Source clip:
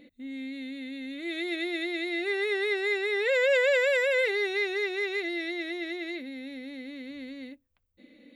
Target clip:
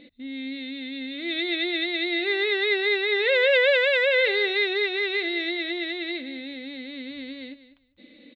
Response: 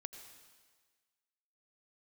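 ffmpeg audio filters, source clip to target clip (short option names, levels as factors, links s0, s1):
-af "highshelf=f=5100:t=q:w=3:g=-11,aecho=1:1:199|398:0.188|0.032,volume=1.41"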